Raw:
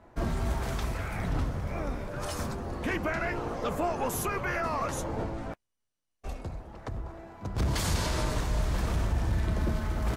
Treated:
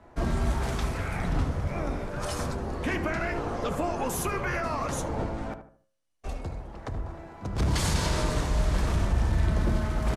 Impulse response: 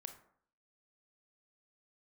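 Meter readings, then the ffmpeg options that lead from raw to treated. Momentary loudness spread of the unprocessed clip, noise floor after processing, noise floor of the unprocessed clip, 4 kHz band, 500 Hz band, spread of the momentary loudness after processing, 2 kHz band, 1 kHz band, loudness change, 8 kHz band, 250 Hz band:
11 LU, -60 dBFS, -81 dBFS, +2.5 dB, +2.0 dB, 12 LU, +1.5 dB, +1.5 dB, +2.5 dB, +2.5 dB, +3.0 dB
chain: -filter_complex "[0:a]lowpass=f=12000:w=0.5412,lowpass=f=12000:w=1.3066,bandreject=f=107.7:t=h:w=4,bandreject=f=215.4:t=h:w=4,bandreject=f=323.1:t=h:w=4,bandreject=f=430.8:t=h:w=4,bandreject=f=538.5:t=h:w=4,bandreject=f=646.2:t=h:w=4,bandreject=f=753.9:t=h:w=4,bandreject=f=861.6:t=h:w=4,bandreject=f=969.3:t=h:w=4,bandreject=f=1077:t=h:w=4,bandreject=f=1184.7:t=h:w=4,bandreject=f=1292.4:t=h:w=4,bandreject=f=1400.1:t=h:w=4,bandreject=f=1507.8:t=h:w=4,bandreject=f=1615.5:t=h:w=4,bandreject=f=1723.2:t=h:w=4,acrossover=split=350|3000[s0][s1][s2];[s1]acompressor=threshold=0.0282:ratio=6[s3];[s0][s3][s2]amix=inputs=3:normalize=0,asplit=2[s4][s5];[s5]adelay=76,lowpass=f=1400:p=1,volume=0.376,asplit=2[s6][s7];[s7]adelay=76,lowpass=f=1400:p=1,volume=0.35,asplit=2[s8][s9];[s9]adelay=76,lowpass=f=1400:p=1,volume=0.35,asplit=2[s10][s11];[s11]adelay=76,lowpass=f=1400:p=1,volume=0.35[s12];[s4][s6][s8][s10][s12]amix=inputs=5:normalize=0,asplit=2[s13][s14];[1:a]atrim=start_sample=2205,afade=t=out:st=0.23:d=0.01,atrim=end_sample=10584[s15];[s14][s15]afir=irnorm=-1:irlink=0,volume=0.631[s16];[s13][s16]amix=inputs=2:normalize=0"

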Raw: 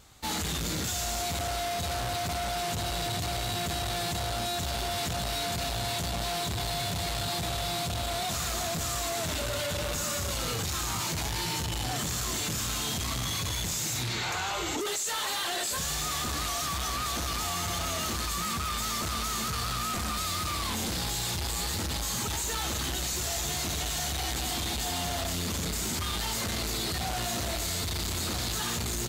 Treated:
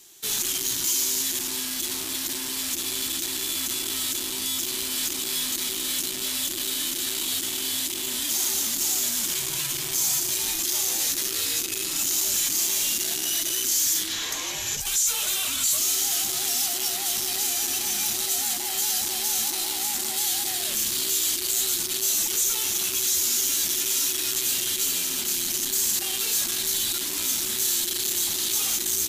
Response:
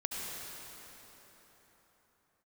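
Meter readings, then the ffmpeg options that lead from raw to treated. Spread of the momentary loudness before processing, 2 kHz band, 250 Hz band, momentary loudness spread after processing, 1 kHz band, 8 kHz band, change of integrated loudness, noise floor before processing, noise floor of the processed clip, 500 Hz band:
1 LU, +0.5 dB, -2.5 dB, 5 LU, -7.5 dB, +10.0 dB, +7.0 dB, -32 dBFS, -31 dBFS, -5.0 dB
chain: -af "afreqshift=-440,crystalizer=i=9:c=0,aeval=exprs='0.75*(cos(1*acos(clip(val(0)/0.75,-1,1)))-cos(1*PI/2))+0.0237*(cos(3*acos(clip(val(0)/0.75,-1,1)))-cos(3*PI/2))':c=same,volume=0.376"

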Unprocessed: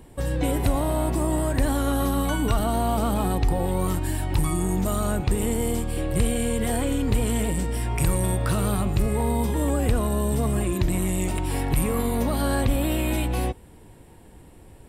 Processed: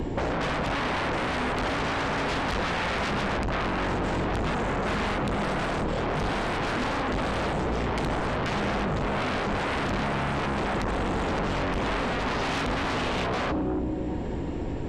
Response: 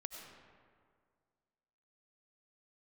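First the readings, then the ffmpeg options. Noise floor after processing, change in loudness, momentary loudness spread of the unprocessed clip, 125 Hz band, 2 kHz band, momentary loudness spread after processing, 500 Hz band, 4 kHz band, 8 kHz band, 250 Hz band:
-30 dBFS, -3.0 dB, 3 LU, -7.0 dB, +7.0 dB, 1 LU, -1.5 dB, +3.0 dB, -13.5 dB, -4.0 dB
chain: -filter_complex "[0:a]asplit=2[s0][s1];[s1]equalizer=f=280:w=0.46:g=15[s2];[1:a]atrim=start_sample=2205[s3];[s2][s3]afir=irnorm=-1:irlink=0,volume=0.316[s4];[s0][s4]amix=inputs=2:normalize=0,asoftclip=type=tanh:threshold=0.0841,highshelf=f=4600:g=-10,bandreject=f=50:t=h:w=6,bandreject=f=100:t=h:w=6,bandreject=f=150:t=h:w=6,bandreject=f=200:t=h:w=6,bandreject=f=250:t=h:w=6,aresample=16000,aresample=44100,acrossover=split=4800[s5][s6];[s6]acompressor=threshold=0.00178:ratio=4:attack=1:release=60[s7];[s5][s7]amix=inputs=2:normalize=0,aeval=exprs='0.141*sin(PI/2*3.98*val(0)/0.141)':c=same,acompressor=threshold=0.0501:ratio=6" -ar 48000 -c:a libopus -b:a 48k

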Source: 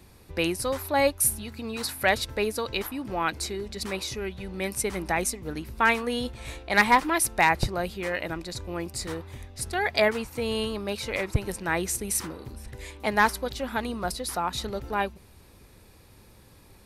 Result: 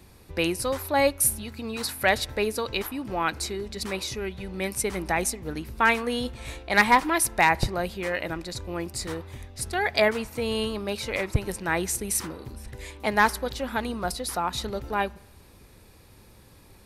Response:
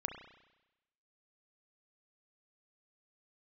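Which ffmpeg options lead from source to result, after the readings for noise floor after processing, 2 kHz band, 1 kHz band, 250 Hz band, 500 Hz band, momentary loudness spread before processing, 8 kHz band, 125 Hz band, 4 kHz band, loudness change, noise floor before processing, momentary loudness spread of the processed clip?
-53 dBFS, +1.0 dB, +1.0 dB, +1.0 dB, +1.0 dB, 13 LU, +1.0 dB, +1.0 dB, +1.0 dB, +1.0 dB, -54 dBFS, 13 LU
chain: -filter_complex "[0:a]asplit=2[s0][s1];[1:a]atrim=start_sample=2205[s2];[s1][s2]afir=irnorm=-1:irlink=0,volume=0.119[s3];[s0][s3]amix=inputs=2:normalize=0"

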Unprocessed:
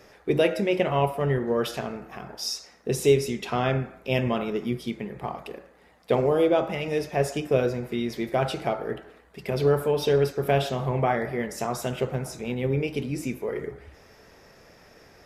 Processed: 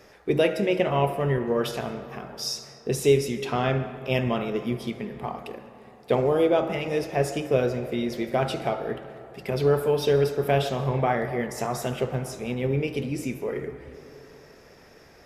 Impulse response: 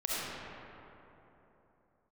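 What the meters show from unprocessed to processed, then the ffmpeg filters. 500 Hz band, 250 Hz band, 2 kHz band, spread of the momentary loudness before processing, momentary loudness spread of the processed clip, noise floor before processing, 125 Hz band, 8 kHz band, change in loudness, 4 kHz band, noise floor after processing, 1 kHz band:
+0.5 dB, +0.5 dB, 0.0 dB, 12 LU, 13 LU, -55 dBFS, +0.5 dB, 0.0 dB, +0.5 dB, 0.0 dB, -52 dBFS, +0.5 dB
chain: -filter_complex "[0:a]asplit=2[s0][s1];[1:a]atrim=start_sample=2205,adelay=72[s2];[s1][s2]afir=irnorm=-1:irlink=0,volume=0.1[s3];[s0][s3]amix=inputs=2:normalize=0"

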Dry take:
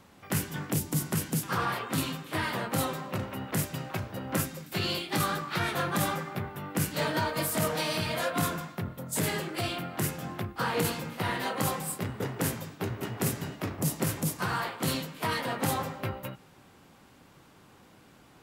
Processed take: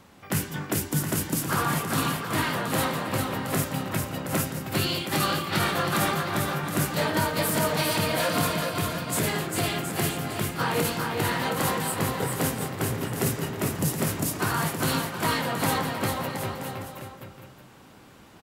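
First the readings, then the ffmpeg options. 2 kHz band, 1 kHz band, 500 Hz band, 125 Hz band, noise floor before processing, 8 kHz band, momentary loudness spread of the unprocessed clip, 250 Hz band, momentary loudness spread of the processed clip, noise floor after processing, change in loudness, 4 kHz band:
+5.0 dB, +5.0 dB, +5.0 dB, +4.0 dB, -57 dBFS, +5.0 dB, 7 LU, +4.5 dB, 5 LU, -50 dBFS, +4.5 dB, +5.0 dB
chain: -filter_complex "[0:a]asplit=2[s0][s1];[s1]asoftclip=type=tanh:threshold=0.0668,volume=0.282[s2];[s0][s2]amix=inputs=2:normalize=0,aecho=1:1:400|720|976|1181|1345:0.631|0.398|0.251|0.158|0.1,volume=1.12"

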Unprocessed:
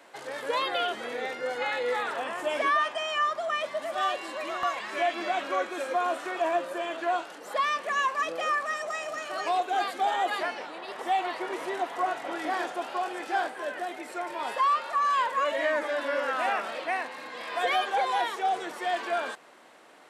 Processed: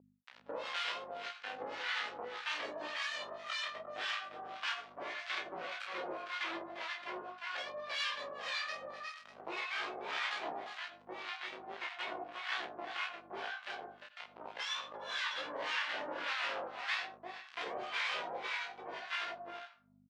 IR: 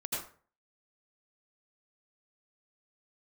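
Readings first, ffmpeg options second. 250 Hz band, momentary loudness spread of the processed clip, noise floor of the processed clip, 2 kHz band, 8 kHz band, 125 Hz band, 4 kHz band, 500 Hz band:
-13.5 dB, 9 LU, -61 dBFS, -7.0 dB, -9.5 dB, no reading, -3.5 dB, -14.5 dB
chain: -filter_complex "[0:a]acrusher=bits=3:mix=0:aa=0.5,asplit=2[s0][s1];[s1]adelay=30,volume=0.75[s2];[s0][s2]amix=inputs=2:normalize=0,asplit=2[s3][s4];[1:a]atrim=start_sample=2205,lowpass=6600[s5];[s4][s5]afir=irnorm=-1:irlink=0,volume=0.224[s6];[s3][s6]amix=inputs=2:normalize=0,alimiter=limit=0.119:level=0:latency=1:release=60,acompressor=mode=upward:threshold=0.00794:ratio=2.5,aecho=1:1:351:0.501,flanger=delay=16.5:depth=2.2:speed=0.4,aeval=exprs='val(0)+0.00631*(sin(2*PI*50*n/s)+sin(2*PI*2*50*n/s)/2+sin(2*PI*3*50*n/s)/3+sin(2*PI*4*50*n/s)/4+sin(2*PI*5*50*n/s)/5)':c=same,highpass=440,lowpass=3400,afftfilt=real='re*lt(hypot(re,im),0.126)':imag='im*lt(hypot(re,im),0.126)':win_size=1024:overlap=0.75,acrossover=split=960[s7][s8];[s7]aeval=exprs='val(0)*(1-1/2+1/2*cos(2*PI*1.8*n/s))':c=same[s9];[s8]aeval=exprs='val(0)*(1-1/2-1/2*cos(2*PI*1.8*n/s))':c=same[s10];[s9][s10]amix=inputs=2:normalize=0,adynamicequalizer=threshold=0.00355:dfrequency=2600:dqfactor=0.7:tfrequency=2600:tqfactor=0.7:attack=5:release=100:ratio=0.375:range=1.5:mode=boostabove:tftype=highshelf,volume=1.12"

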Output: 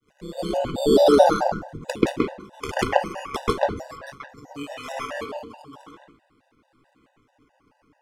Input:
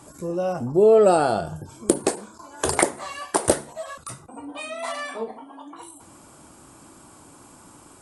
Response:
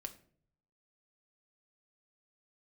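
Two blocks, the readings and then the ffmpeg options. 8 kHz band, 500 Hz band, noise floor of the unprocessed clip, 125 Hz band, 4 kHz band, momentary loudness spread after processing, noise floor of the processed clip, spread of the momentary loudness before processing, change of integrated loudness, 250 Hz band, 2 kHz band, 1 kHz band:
-13.0 dB, -0.5 dB, -49 dBFS, -1.0 dB, +3.0 dB, 22 LU, -68 dBFS, 22 LU, -0.5 dB, +2.0 dB, 0.0 dB, +1.5 dB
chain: -filter_complex "[0:a]tremolo=f=140:d=0.919,agate=range=0.0224:threshold=0.00794:ratio=3:detection=peak,bandreject=f=1000:w=16,adynamicequalizer=threshold=0.0126:dfrequency=1100:dqfactor=1.1:tfrequency=1100:tqfactor=1.1:attack=5:release=100:ratio=0.375:range=2:mode=boostabove:tftype=bell,acrusher=samples=9:mix=1:aa=0.000001:lfo=1:lforange=5.4:lforate=0.42,lowpass=9900,asplit=2[s0][s1];[1:a]atrim=start_sample=2205,lowpass=2400,adelay=133[s2];[s1][s2]afir=irnorm=-1:irlink=0,volume=2.82[s3];[s0][s3]amix=inputs=2:normalize=0,afftfilt=real='re*gt(sin(2*PI*4.6*pts/sr)*(1-2*mod(floor(b*sr/1024/500),2)),0)':imag='im*gt(sin(2*PI*4.6*pts/sr)*(1-2*mod(floor(b*sr/1024/500),2)),0)':win_size=1024:overlap=0.75,volume=0.891"

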